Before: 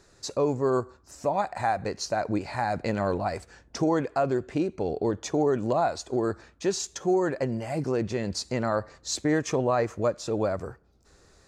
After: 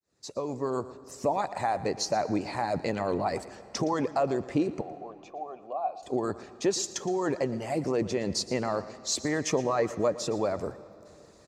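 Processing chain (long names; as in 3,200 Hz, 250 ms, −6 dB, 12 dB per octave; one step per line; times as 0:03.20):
fade in at the beginning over 0.88 s
high-pass filter 110 Hz 12 dB per octave
parametric band 1,500 Hz −7 dB 0.29 octaves
harmonic and percussive parts rebalanced harmonic −11 dB
low-shelf EQ 220 Hz +5.5 dB
in parallel at +0.5 dB: brickwall limiter −25 dBFS, peak gain reduction 11 dB
0:04.81–0:06.03: on the sum: formant filter a
single-tap delay 116 ms −17 dB
on a send at −18 dB: convolution reverb RT60 2.9 s, pre-delay 110 ms
on the sum: level −2.5 dB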